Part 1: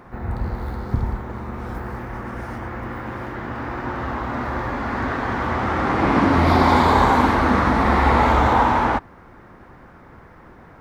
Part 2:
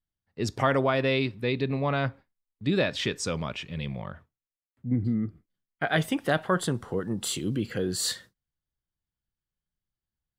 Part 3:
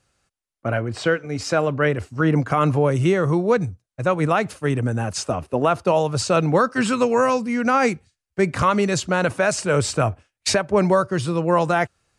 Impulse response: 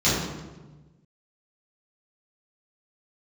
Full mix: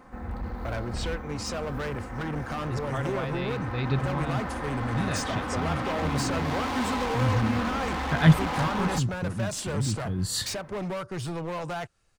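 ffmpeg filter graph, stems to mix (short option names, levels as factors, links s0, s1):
-filter_complex "[0:a]aecho=1:1:3.9:0.55,volume=10.6,asoftclip=hard,volume=0.0944,volume=0.398[s0];[1:a]asubboost=boost=11.5:cutoff=130,adelay=2300,volume=1.12[s1];[2:a]acompressor=threshold=0.0794:ratio=3,asoftclip=type=hard:threshold=0.0531,volume=0.631,asplit=2[s2][s3];[s3]apad=whole_len=559324[s4];[s1][s4]sidechaincompress=threshold=0.00794:ratio=8:attack=16:release=423[s5];[s0][s5][s2]amix=inputs=3:normalize=0"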